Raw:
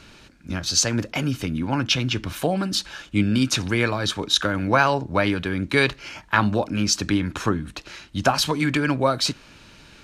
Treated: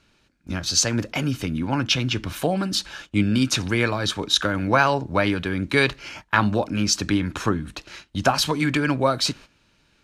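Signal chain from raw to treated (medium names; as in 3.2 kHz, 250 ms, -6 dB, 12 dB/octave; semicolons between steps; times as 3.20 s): gate -40 dBFS, range -14 dB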